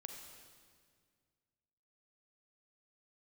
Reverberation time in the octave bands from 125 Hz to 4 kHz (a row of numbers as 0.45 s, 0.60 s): 2.6 s, 2.2 s, 2.0 s, 1.8 s, 1.8 s, 1.7 s